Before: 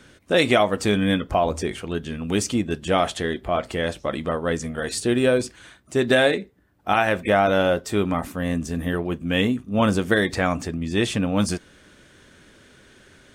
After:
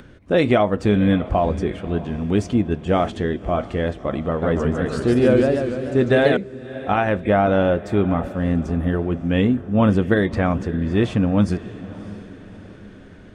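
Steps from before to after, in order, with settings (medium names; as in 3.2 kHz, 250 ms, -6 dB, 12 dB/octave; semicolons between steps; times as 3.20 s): low-pass 2.9 kHz 6 dB/octave; tilt EQ -2 dB/octave; upward compressor, threshold -40 dBFS; echo that smears into a reverb 615 ms, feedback 47%, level -16 dB; 4.27–6.37 s: modulated delay 146 ms, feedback 59%, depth 216 cents, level -3 dB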